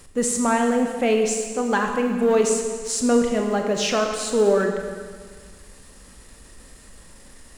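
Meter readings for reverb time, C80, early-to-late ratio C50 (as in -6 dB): 1.7 s, 5.5 dB, 4.5 dB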